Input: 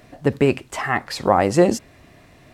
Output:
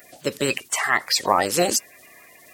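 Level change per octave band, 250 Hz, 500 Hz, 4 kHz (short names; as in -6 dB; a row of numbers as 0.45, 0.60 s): -9.0, -6.0, +8.5 dB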